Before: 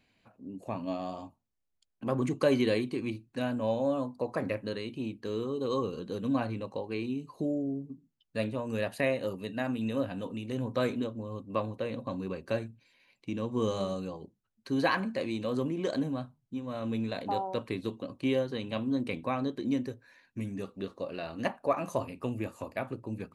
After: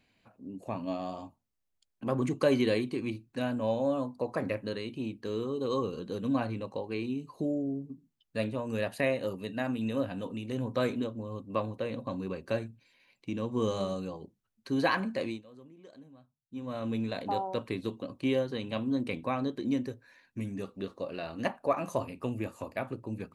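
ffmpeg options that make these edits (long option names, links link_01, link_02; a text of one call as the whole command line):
ffmpeg -i in.wav -filter_complex "[0:a]asplit=3[link_01][link_02][link_03];[link_01]atrim=end=15.42,asetpts=PTS-STARTPTS,afade=type=out:start_time=15.28:duration=0.14:silence=0.0841395[link_04];[link_02]atrim=start=15.42:end=16.48,asetpts=PTS-STARTPTS,volume=-21.5dB[link_05];[link_03]atrim=start=16.48,asetpts=PTS-STARTPTS,afade=type=in:duration=0.14:silence=0.0841395[link_06];[link_04][link_05][link_06]concat=n=3:v=0:a=1" out.wav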